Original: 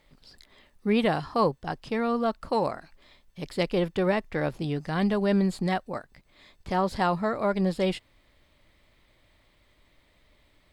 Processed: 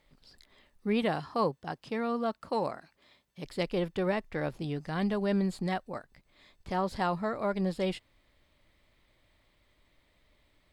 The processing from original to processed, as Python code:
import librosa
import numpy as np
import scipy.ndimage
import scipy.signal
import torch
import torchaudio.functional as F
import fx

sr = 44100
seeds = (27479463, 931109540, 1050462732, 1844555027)

y = fx.highpass(x, sr, hz=98.0, slope=12, at=(1.02, 3.45))
y = F.gain(torch.from_numpy(y), -5.0).numpy()